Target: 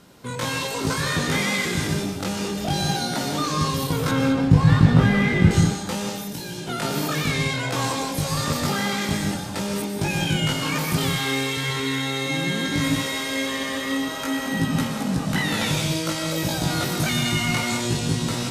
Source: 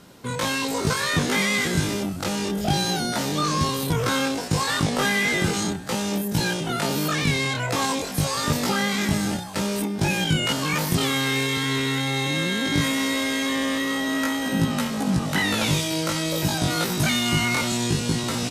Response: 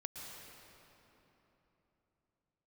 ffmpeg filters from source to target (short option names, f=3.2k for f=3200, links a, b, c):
-filter_complex "[0:a]asettb=1/sr,asplit=3[a][b][c];[a]atrim=end=4.114[d];[b]atrim=start=4.11:end=5.51,asetpts=PTS-STARTPTS,afade=t=in:d=0.004:c=qsin,afade=t=out:st=1.396:d=0.004:c=qsin,bass=f=250:g=14,treble=f=4k:g=-14[e];[c]atrim=start=5.506[f];[d][e]acrossfade=d=0.004:c1=hsin:c2=qsin[g];[g][f]acrossfade=d=0.004:c1=qsin:c2=hsin,asettb=1/sr,asplit=3[h][i][j];[h]atrim=end=6.094[k];[i]atrim=start=6.09:end=6.68,asetpts=PTS-STARTPTS,afade=t=in:d=0.004:c=qsin,afade=t=out:st=0.586:d=0.004:c=qsin,acrossover=split=200|420|2700[l][m][n][o];[l]acompressor=threshold=-38dB:ratio=4[p];[m]acompressor=threshold=-36dB:ratio=4[q];[n]acompressor=threshold=-42dB:ratio=4[r];[o]acompressor=threshold=-35dB:ratio=4[s];[p][q][r][s]amix=inputs=4:normalize=0[t];[j]atrim=start=6.676[u];[k][t]acrossfade=d=0.004:c1=hsin:c2=qsin[v];[v][u]acrossfade=d=0.004:c1=qsin:c2=hsin[w];[1:a]atrim=start_sample=2205,afade=t=out:st=0.28:d=0.01,atrim=end_sample=12789[x];[w][x]afir=irnorm=-1:irlink=0,volume=2.5dB"